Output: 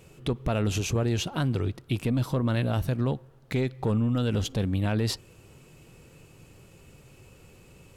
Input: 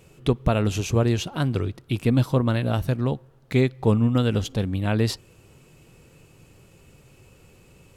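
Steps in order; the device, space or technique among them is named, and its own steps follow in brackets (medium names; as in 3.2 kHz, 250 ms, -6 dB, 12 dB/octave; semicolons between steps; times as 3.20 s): soft clipper into limiter (saturation -11.5 dBFS, distortion -20 dB; peak limiter -19 dBFS, peak gain reduction 7 dB)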